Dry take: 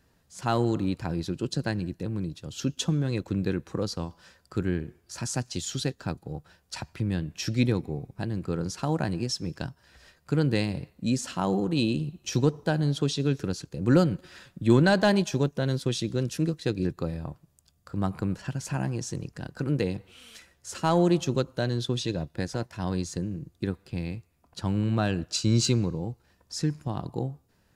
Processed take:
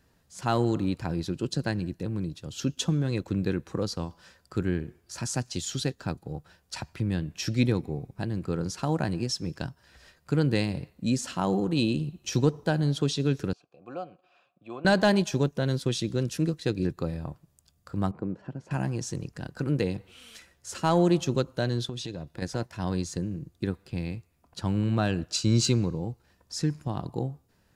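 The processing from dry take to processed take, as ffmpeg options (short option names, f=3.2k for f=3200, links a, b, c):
-filter_complex "[0:a]asettb=1/sr,asplit=3[a][b][c];[a]atrim=end=13.534[d];[b]atrim=start=13.53:end=14.85,asetpts=PTS-STARTPTS,afade=t=in:d=0.004:c=qsin,afade=t=out:st=1.316:d=0.004:c=qsin,asplit=3[e][f][g];[e]bandpass=f=730:t=q:w=8,volume=0dB[h];[f]bandpass=f=1.09k:t=q:w=8,volume=-6dB[i];[g]bandpass=f=2.44k:t=q:w=8,volume=-9dB[j];[h][i][j]amix=inputs=3:normalize=0[k];[c]atrim=start=14.846[l];[d][k]acrossfade=d=0.004:c1=hsin:c2=qsin[m];[m][l]acrossfade=d=0.004:c1=qsin:c2=hsin,asettb=1/sr,asplit=3[n][o][p];[n]atrim=end=18.114[q];[o]atrim=start=18.11:end=18.71,asetpts=PTS-STARTPTS,afade=t=in:d=0.004:c=qsin,afade=t=out:st=0.596:d=0.004:c=qsin,bandpass=f=360:t=q:w=0.85[r];[p]atrim=start=18.706[s];[q][r]acrossfade=d=0.004:c1=hsin:c2=qsin[t];[t][s]acrossfade=d=0.004:c1=qsin:c2=hsin,asettb=1/sr,asplit=3[u][v][w];[u]atrim=end=21.894[x];[v]atrim=start=21.89:end=22.42,asetpts=PTS-STARTPTS,afade=t=in:d=0.004:c=qsin,afade=t=out:st=0.526:d=0.004:c=qsin,acompressor=threshold=-32dB:ratio=4:attack=3.2:release=140:knee=1:detection=peak[y];[w]atrim=start=22.416[z];[x][y]acrossfade=d=0.004:c1=hsin:c2=qsin[aa];[aa][z]acrossfade=d=0.004:c1=qsin:c2=hsin"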